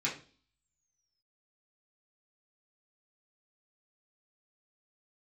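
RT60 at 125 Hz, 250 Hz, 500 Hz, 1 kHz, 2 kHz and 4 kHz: 0.55 s, 0.55 s, 0.45 s, 0.35 s, 0.35 s, 0.50 s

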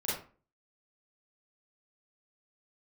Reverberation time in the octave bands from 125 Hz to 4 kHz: 0.45 s, 0.45 s, 0.40 s, 0.40 s, 0.35 s, 0.25 s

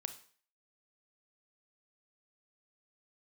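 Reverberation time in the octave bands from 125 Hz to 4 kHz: 0.50 s, 0.40 s, 0.45 s, 0.45 s, 0.50 s, 0.45 s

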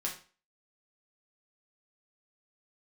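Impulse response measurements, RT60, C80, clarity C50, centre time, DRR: 0.40 s, 14.0 dB, 8.5 dB, 21 ms, -3.0 dB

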